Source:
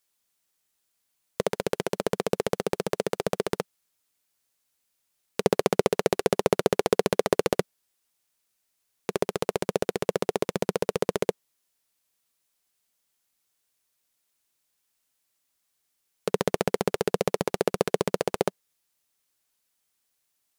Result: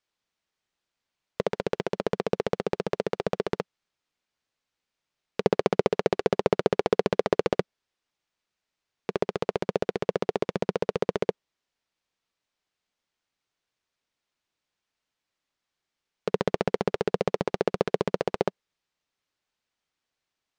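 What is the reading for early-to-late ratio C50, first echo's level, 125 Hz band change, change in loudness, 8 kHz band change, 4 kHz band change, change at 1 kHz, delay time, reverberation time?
no reverb audible, no echo audible, 0.0 dB, −0.5 dB, below −10 dB, −4.0 dB, −0.5 dB, no echo audible, no reverb audible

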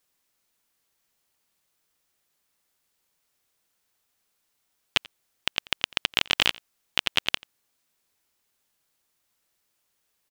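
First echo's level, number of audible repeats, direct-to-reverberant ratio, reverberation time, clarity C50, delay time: −24.0 dB, 1, no reverb audible, no reverb audible, no reverb audible, 87 ms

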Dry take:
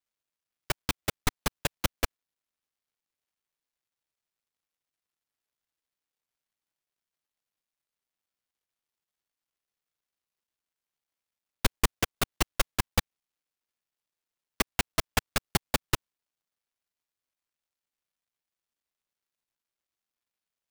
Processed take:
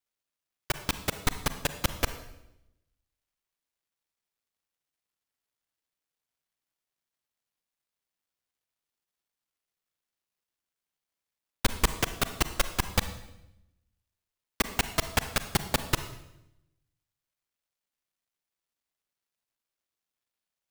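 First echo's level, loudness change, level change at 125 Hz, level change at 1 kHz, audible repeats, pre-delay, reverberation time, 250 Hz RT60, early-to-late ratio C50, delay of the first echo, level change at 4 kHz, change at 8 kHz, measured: no echo audible, +0.5 dB, +0.5 dB, +0.5 dB, no echo audible, 36 ms, 0.85 s, 1.1 s, 11.0 dB, no echo audible, +0.5 dB, +0.5 dB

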